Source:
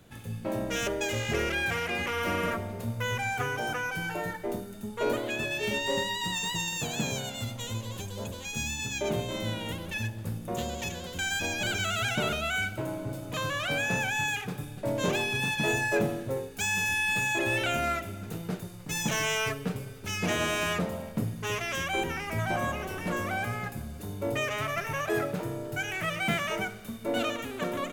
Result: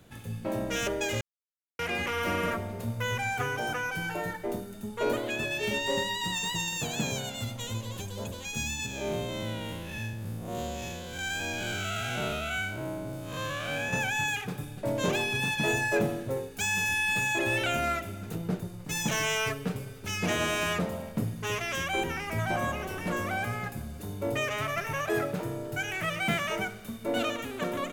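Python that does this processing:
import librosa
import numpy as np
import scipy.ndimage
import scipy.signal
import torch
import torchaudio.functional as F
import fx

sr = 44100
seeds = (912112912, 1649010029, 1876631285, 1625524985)

y = fx.spec_blur(x, sr, span_ms=143.0, at=(8.86, 13.93))
y = fx.tilt_shelf(y, sr, db=3.5, hz=970.0, at=(18.35, 18.85))
y = fx.edit(y, sr, fx.silence(start_s=1.21, length_s=0.58), tone=tone)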